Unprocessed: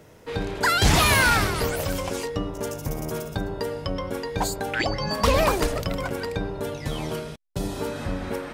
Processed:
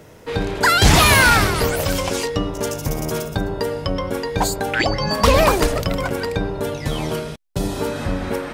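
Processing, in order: 1.86–3.26 s: peaking EQ 4.3 kHz +4 dB 2.1 oct; trim +6 dB

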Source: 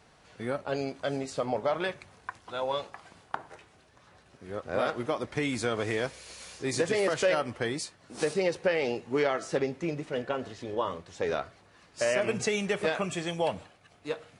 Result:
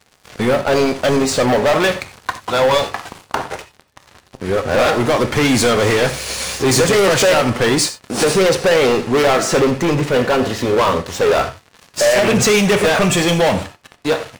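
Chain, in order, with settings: waveshaping leveller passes 5; gated-style reverb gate 110 ms flat, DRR 9.5 dB; trim +4.5 dB

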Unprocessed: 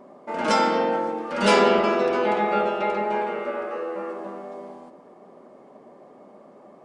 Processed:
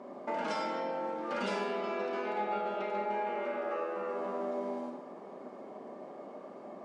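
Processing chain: compression 16:1, threshold -33 dBFS, peak gain reduction 20.5 dB; band-pass 180–7300 Hz; reverberation RT60 0.70 s, pre-delay 24 ms, DRR 2 dB

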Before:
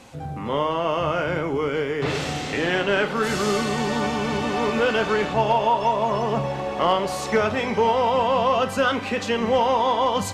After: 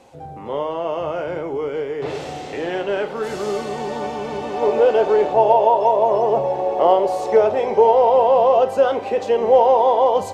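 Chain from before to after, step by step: high-order bell 550 Hz +8.5 dB, from 4.61 s +15.5 dB; trim -7.5 dB

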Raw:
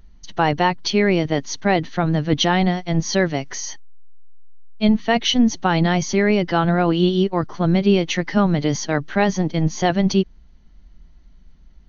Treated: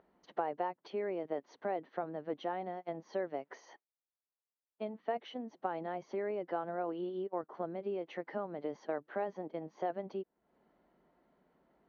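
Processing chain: compression 4:1, threshold -34 dBFS, peak gain reduction 19.5 dB; ladder band-pass 640 Hz, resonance 25%; trim +11.5 dB

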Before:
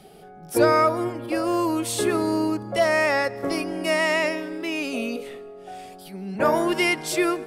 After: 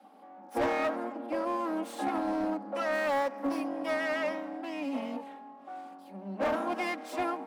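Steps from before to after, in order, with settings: comb filter that takes the minimum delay 3.7 ms; rippled Chebyshev high-pass 190 Hz, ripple 9 dB; treble shelf 2.9 kHz -12 dB; hard clipper -24.5 dBFS, distortion -15 dB; 2.93–3.68 s: treble shelf 9.9 kHz +10.5 dB

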